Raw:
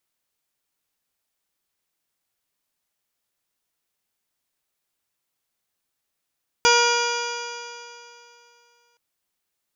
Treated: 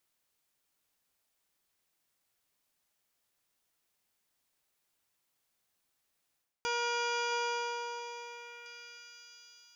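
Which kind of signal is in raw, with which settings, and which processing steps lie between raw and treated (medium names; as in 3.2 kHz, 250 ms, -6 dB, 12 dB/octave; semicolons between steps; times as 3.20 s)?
stretched partials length 2.32 s, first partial 475 Hz, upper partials 1.5/0/-13/-2/-7/-6.5/-19.5/-19/-1/-17/-6/-9.5/-9.5 dB, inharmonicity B 0.00038, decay 2.73 s, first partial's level -19.5 dB
reverse; compression 16:1, threshold -29 dBFS; reverse; dynamic bell 6.2 kHz, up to -6 dB, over -50 dBFS, Q 1.2; repeats whose band climbs or falls 670 ms, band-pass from 750 Hz, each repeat 1.4 oct, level -7.5 dB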